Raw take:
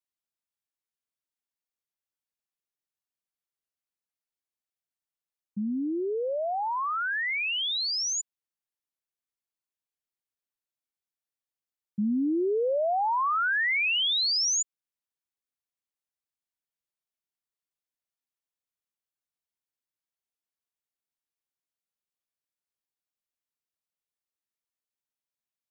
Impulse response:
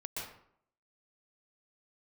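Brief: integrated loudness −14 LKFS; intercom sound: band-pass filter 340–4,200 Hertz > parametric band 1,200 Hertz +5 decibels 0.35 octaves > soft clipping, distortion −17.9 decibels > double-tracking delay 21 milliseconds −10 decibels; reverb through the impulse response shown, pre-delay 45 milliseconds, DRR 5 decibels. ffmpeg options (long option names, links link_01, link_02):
-filter_complex "[0:a]asplit=2[link_01][link_02];[1:a]atrim=start_sample=2205,adelay=45[link_03];[link_02][link_03]afir=irnorm=-1:irlink=0,volume=-6dB[link_04];[link_01][link_04]amix=inputs=2:normalize=0,highpass=340,lowpass=4200,equalizer=frequency=1200:width_type=o:width=0.35:gain=5,asoftclip=threshold=-19.5dB,asplit=2[link_05][link_06];[link_06]adelay=21,volume=-10dB[link_07];[link_05][link_07]amix=inputs=2:normalize=0,volume=12.5dB"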